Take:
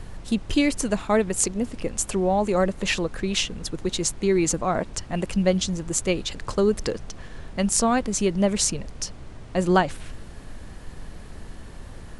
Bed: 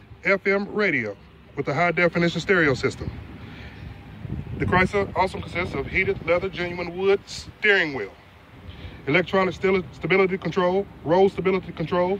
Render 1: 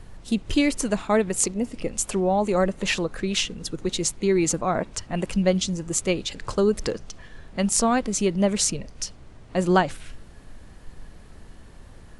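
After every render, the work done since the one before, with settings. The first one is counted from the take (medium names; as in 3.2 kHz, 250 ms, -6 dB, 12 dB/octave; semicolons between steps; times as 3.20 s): noise print and reduce 6 dB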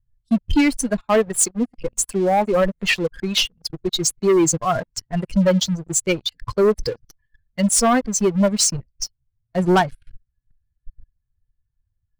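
expander on every frequency bin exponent 2; waveshaping leveller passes 3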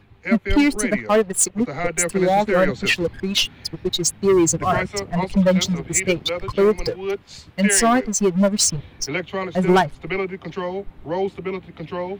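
add bed -5.5 dB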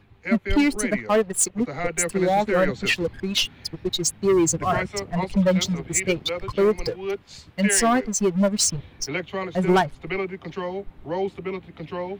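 trim -3 dB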